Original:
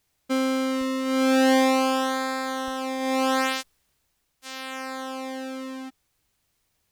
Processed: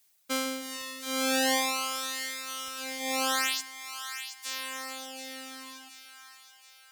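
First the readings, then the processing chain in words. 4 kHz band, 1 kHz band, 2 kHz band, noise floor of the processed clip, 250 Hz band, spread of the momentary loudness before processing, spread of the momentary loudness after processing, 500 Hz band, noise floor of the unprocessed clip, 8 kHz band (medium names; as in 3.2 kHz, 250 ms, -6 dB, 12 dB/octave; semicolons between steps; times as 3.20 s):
+0.5 dB, -7.5 dB, -3.0 dB, -57 dBFS, -13.5 dB, 17 LU, 19 LU, -11.0 dB, -73 dBFS, +4.0 dB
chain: tilt EQ +3.5 dB/octave; reverb removal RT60 1.9 s; two-band feedback delay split 950 Hz, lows 155 ms, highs 725 ms, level -9.5 dB; trim -3.5 dB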